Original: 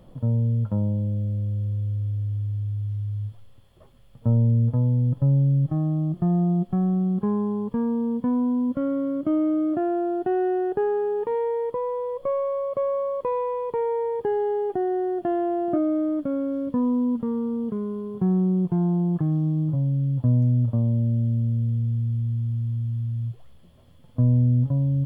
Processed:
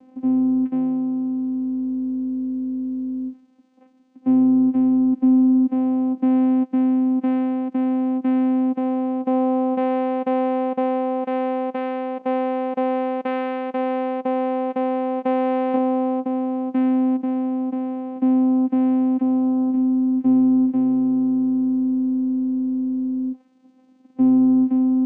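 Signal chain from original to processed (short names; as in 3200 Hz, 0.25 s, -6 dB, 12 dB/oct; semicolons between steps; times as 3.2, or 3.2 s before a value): dynamic EQ 690 Hz, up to +6 dB, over -43 dBFS, Q 3.7; vocoder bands 4, saw 258 Hz; gain +3.5 dB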